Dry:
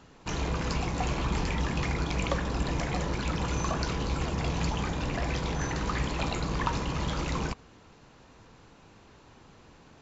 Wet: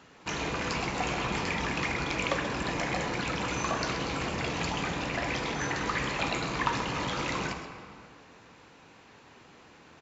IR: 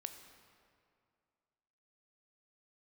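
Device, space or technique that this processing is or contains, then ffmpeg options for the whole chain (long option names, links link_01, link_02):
PA in a hall: -filter_complex "[0:a]highpass=frequency=200:poles=1,equalizer=frequency=2100:width_type=o:width=1.1:gain=5,aecho=1:1:131:0.266[link_01];[1:a]atrim=start_sample=2205[link_02];[link_01][link_02]afir=irnorm=-1:irlink=0,volume=4dB"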